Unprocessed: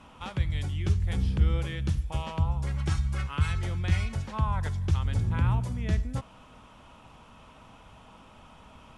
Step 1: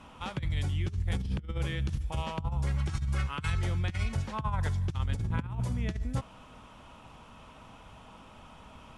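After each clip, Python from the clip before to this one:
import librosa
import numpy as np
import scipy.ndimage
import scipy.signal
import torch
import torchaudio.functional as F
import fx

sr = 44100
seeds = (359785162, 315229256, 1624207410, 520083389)

y = fx.over_compress(x, sr, threshold_db=-28.0, ratio=-0.5)
y = F.gain(torch.from_numpy(y), -1.5).numpy()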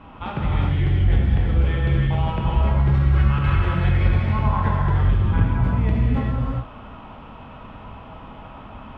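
y = fx.air_absorb(x, sr, metres=460.0)
y = fx.rev_gated(y, sr, seeds[0], gate_ms=440, shape='flat', drr_db=-4.5)
y = F.gain(torch.from_numpy(y), 8.0).numpy()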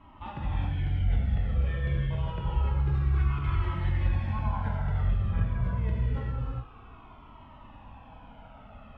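y = fx.comb_cascade(x, sr, direction='falling', hz=0.27)
y = F.gain(torch.from_numpy(y), -6.5).numpy()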